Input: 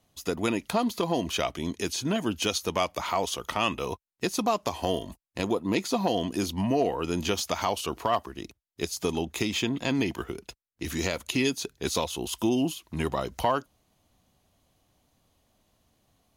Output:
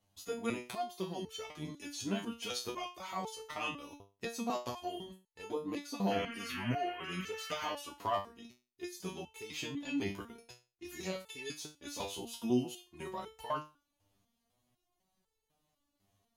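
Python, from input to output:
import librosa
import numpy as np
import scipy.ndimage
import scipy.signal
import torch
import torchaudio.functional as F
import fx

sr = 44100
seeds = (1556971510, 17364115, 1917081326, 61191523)

y = fx.spec_paint(x, sr, seeds[0], shape='noise', start_s=6.1, length_s=1.62, low_hz=1100.0, high_hz=3200.0, level_db=-34.0)
y = fx.resonator_held(y, sr, hz=4.0, low_hz=99.0, high_hz=440.0)
y = y * librosa.db_to_amplitude(1.0)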